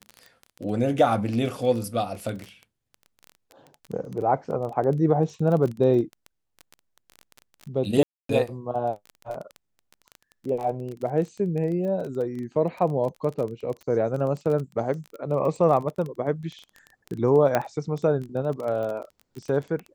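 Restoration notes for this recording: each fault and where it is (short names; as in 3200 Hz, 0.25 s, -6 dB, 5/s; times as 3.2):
crackle 18/s -30 dBFS
8.03–8.29 gap 0.263 s
9.34 gap 3.6 ms
17.55 pop -9 dBFS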